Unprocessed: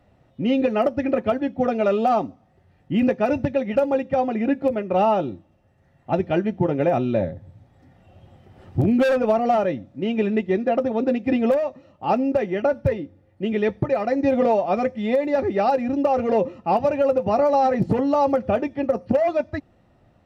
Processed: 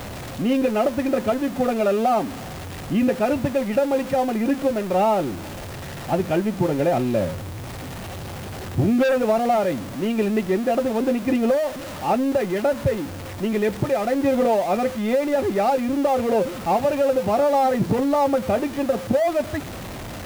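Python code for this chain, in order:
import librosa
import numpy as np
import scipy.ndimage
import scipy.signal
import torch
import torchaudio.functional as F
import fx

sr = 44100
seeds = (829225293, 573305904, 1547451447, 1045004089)

y = x + 0.5 * 10.0 ** (-26.5 / 20.0) * np.sign(x)
y = fx.quant_dither(y, sr, seeds[0], bits=8, dither='triangular')
y = F.gain(torch.from_numpy(y), -1.5).numpy()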